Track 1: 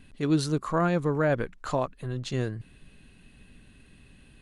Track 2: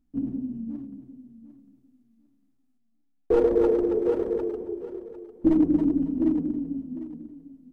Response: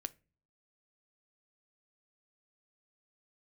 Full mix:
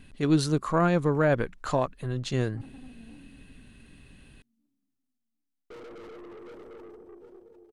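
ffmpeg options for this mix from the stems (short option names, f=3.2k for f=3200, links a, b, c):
-filter_complex "[0:a]volume=1.5dB[a];[1:a]highshelf=f=2k:g=10,aeval=exprs='(tanh(35.5*val(0)+0.3)-tanh(0.3))/35.5':c=same,adelay=2400,volume=-12.5dB[b];[a][b]amix=inputs=2:normalize=0,aeval=exprs='0.473*(cos(1*acos(clip(val(0)/0.473,-1,1)))-cos(1*PI/2))+0.0133*(cos(4*acos(clip(val(0)/0.473,-1,1)))-cos(4*PI/2))':c=same"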